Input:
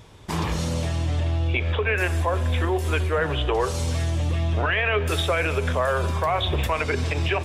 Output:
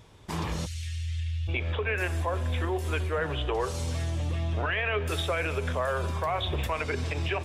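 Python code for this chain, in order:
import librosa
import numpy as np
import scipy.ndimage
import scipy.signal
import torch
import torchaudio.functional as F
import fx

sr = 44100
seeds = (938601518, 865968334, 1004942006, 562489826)

y = fx.cheby2_bandstop(x, sr, low_hz=200.0, high_hz=910.0, order=4, stop_db=50, at=(0.65, 1.47), fade=0.02)
y = y * librosa.db_to_amplitude(-6.0)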